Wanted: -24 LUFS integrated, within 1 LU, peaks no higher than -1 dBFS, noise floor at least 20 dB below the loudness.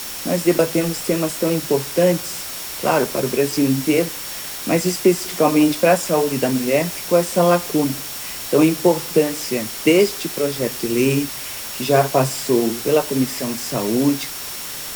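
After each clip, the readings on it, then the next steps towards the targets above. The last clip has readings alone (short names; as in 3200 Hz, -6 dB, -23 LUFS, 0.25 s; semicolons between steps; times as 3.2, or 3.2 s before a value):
steady tone 5500 Hz; tone level -39 dBFS; noise floor -30 dBFS; noise floor target -39 dBFS; loudness -19.0 LUFS; peak -3.0 dBFS; loudness target -24.0 LUFS
-> notch 5500 Hz, Q 30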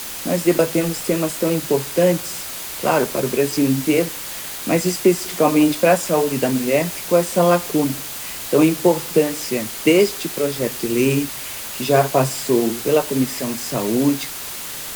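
steady tone none; noise floor -31 dBFS; noise floor target -39 dBFS
-> noise print and reduce 8 dB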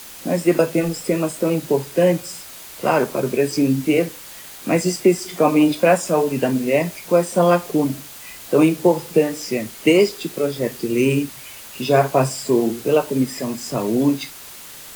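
noise floor -38 dBFS; noise floor target -40 dBFS
-> noise print and reduce 6 dB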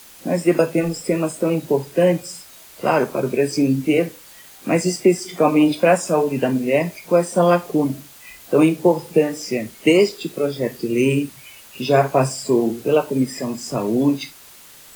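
noise floor -44 dBFS; loudness -19.5 LUFS; peak -3.5 dBFS; loudness target -24.0 LUFS
-> gain -4.5 dB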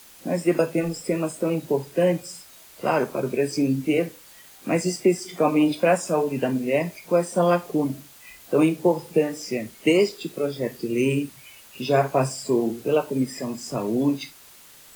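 loudness -24.0 LUFS; peak -8.0 dBFS; noise floor -49 dBFS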